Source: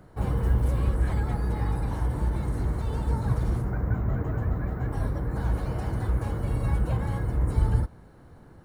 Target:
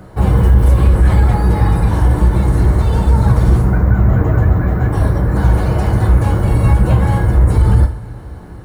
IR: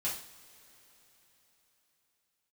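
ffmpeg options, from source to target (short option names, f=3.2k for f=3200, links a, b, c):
-filter_complex "[0:a]asplit=2[a][b];[1:a]atrim=start_sample=2205[c];[b][c]afir=irnorm=-1:irlink=0,volume=-5dB[d];[a][d]amix=inputs=2:normalize=0,alimiter=level_in=12dB:limit=-1dB:release=50:level=0:latency=1,volume=-1dB"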